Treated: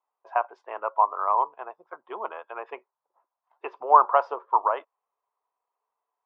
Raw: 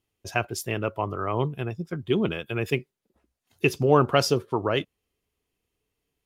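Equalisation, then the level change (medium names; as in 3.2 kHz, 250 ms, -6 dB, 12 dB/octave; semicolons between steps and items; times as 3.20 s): high-pass 630 Hz 24 dB/octave; resonant low-pass 1 kHz, resonance Q 4.7; distance through air 110 m; 0.0 dB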